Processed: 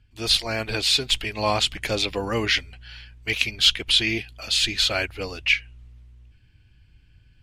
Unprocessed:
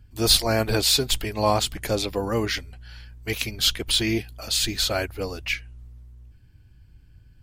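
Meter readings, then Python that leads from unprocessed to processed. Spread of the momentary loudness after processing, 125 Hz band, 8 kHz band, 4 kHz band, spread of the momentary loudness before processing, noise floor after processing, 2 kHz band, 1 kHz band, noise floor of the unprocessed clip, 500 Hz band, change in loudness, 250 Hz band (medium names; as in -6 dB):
8 LU, -4.0 dB, -4.0 dB, +3.0 dB, 11 LU, -56 dBFS, +5.5 dB, -1.5 dB, -53 dBFS, -3.0 dB, +1.0 dB, -4.0 dB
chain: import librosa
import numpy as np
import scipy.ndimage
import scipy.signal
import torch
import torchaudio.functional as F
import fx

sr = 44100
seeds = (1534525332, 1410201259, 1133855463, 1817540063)

y = scipy.signal.sosfilt(scipy.signal.butter(2, 10000.0, 'lowpass', fs=sr, output='sos'), x)
y = fx.peak_eq(y, sr, hz=2700.0, db=11.5, octaves=1.4)
y = fx.rider(y, sr, range_db=10, speed_s=2.0)
y = F.gain(torch.from_numpy(y), -5.0).numpy()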